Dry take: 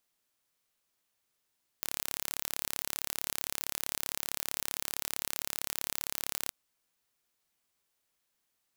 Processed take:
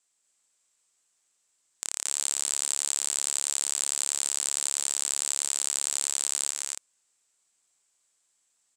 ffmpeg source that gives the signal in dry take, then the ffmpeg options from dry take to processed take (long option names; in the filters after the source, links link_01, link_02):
-f lavfi -i "aevalsrc='0.473*eq(mod(n,1246),0)':duration=4.67:sample_rate=44100"
-af "lowpass=frequency=7800:width_type=q:width=6.3,lowshelf=frequency=210:gain=-11,aecho=1:1:239.1|282.8:0.708|0.501"